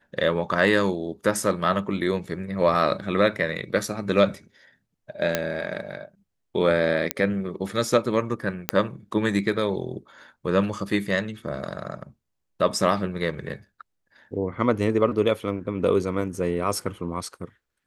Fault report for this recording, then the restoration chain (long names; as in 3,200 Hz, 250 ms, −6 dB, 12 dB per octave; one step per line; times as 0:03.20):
0:05.35: click −6 dBFS
0:07.11: click −4 dBFS
0:08.69: click −3 dBFS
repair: click removal